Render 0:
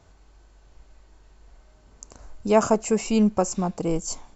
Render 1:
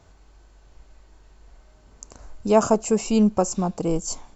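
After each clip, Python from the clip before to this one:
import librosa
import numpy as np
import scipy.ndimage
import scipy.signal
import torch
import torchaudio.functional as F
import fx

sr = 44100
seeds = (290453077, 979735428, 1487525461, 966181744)

y = fx.dynamic_eq(x, sr, hz=2000.0, q=2.1, threshold_db=-48.0, ratio=4.0, max_db=-7)
y = y * 10.0 ** (1.5 / 20.0)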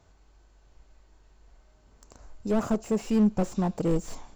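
y = fx.rider(x, sr, range_db=4, speed_s=2.0)
y = fx.slew_limit(y, sr, full_power_hz=51.0)
y = y * 10.0 ** (-3.5 / 20.0)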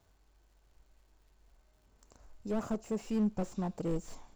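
y = fx.dmg_crackle(x, sr, seeds[0], per_s=310.0, level_db=-55.0)
y = y * 10.0 ** (-8.5 / 20.0)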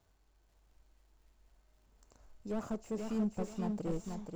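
y = fx.echo_feedback(x, sr, ms=484, feedback_pct=31, wet_db=-5.0)
y = y * 10.0 ** (-3.5 / 20.0)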